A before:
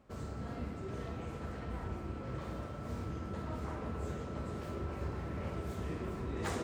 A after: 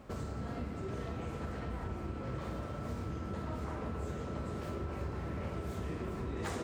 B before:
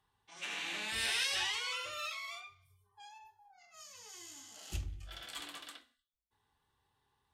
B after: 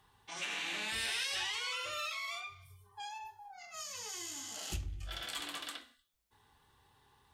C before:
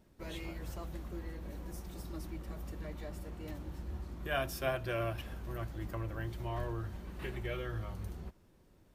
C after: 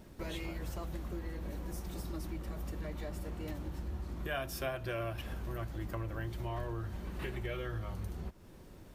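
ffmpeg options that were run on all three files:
-af "acompressor=threshold=-52dB:ratio=2.5,volume=11dB"

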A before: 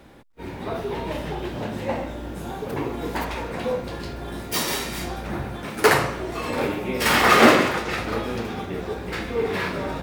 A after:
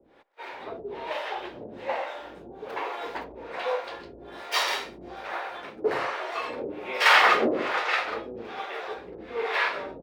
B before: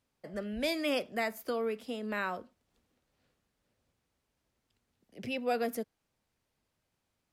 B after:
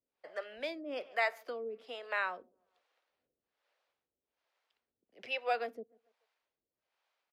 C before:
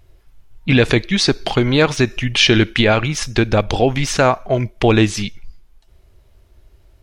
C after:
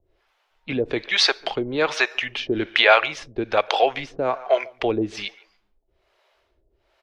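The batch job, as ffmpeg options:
-filter_complex "[0:a]acrossover=split=420 4800:gain=0.0708 1 0.126[a][b][c];[a][b][c]amix=inputs=3:normalize=0,asplit=2[d][e];[e]adelay=144,lowpass=f=1.3k:p=1,volume=-22dB,asplit=2[f][g];[g]adelay=144,lowpass=f=1.3k:p=1,volume=0.39,asplit=2[h][i];[i]adelay=144,lowpass=f=1.3k:p=1,volume=0.39[j];[d][f][h][j]amix=inputs=4:normalize=0,acrossover=split=440[k][l];[k]aeval=exprs='val(0)*(1-1/2+1/2*cos(2*PI*1.2*n/s))':c=same[m];[l]aeval=exprs='val(0)*(1-1/2-1/2*cos(2*PI*1.2*n/s))':c=same[n];[m][n]amix=inputs=2:normalize=0,volume=4dB"

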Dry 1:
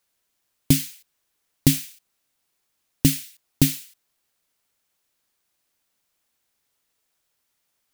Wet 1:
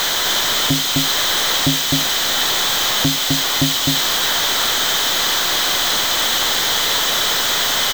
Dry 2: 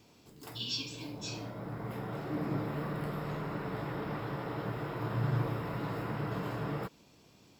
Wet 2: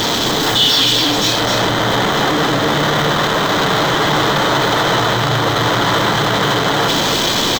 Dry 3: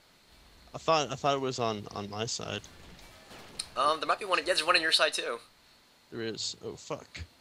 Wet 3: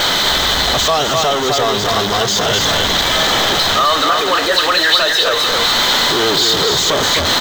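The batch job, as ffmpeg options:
-filter_complex "[0:a]aeval=exprs='val(0)+0.5*0.0841*sgn(val(0))':c=same,acontrast=90,acrusher=bits=5:dc=4:mix=0:aa=0.000001,equalizer=f=7.5k:w=7.1:g=-6.5,asplit=2[a][b];[b]aecho=0:1:257:0.596[c];[a][c]amix=inputs=2:normalize=0,asplit=2[d][e];[e]highpass=f=720:p=1,volume=12dB,asoftclip=type=tanh:threshold=0dB[f];[d][f]amix=inputs=2:normalize=0,lowpass=f=3k:p=1,volume=-6dB,alimiter=limit=-6.5dB:level=0:latency=1:release=486,superequalizer=12b=0.562:13b=2:15b=1.41:16b=0.316"

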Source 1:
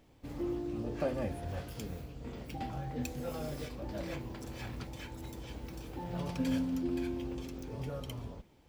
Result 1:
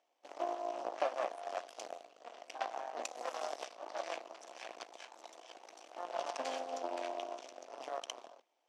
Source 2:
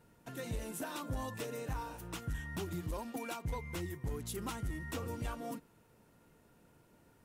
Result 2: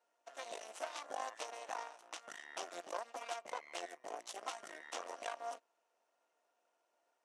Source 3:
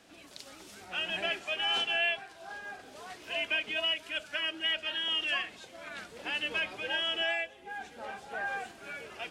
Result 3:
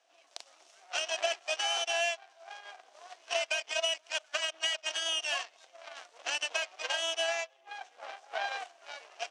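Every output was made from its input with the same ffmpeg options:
-af "aeval=exprs='0.112*(cos(1*acos(clip(val(0)/0.112,-1,1)))-cos(1*PI/2))+0.0126*(cos(6*acos(clip(val(0)/0.112,-1,1)))-cos(6*PI/2))+0.0141*(cos(7*acos(clip(val(0)/0.112,-1,1)))-cos(7*PI/2))':c=same,acompressor=threshold=-35dB:ratio=6,highpass=f=430:w=0.5412,highpass=f=430:w=1.3066,equalizer=f=430:t=q:w=4:g=-5,equalizer=f=690:t=q:w=4:g=10,equalizer=f=1.1k:t=q:w=4:g=3,equalizer=f=2.9k:t=q:w=4:g=3,equalizer=f=5.9k:t=q:w=4:g=6,lowpass=f=8.8k:w=0.5412,lowpass=f=8.8k:w=1.3066,volume=5dB"

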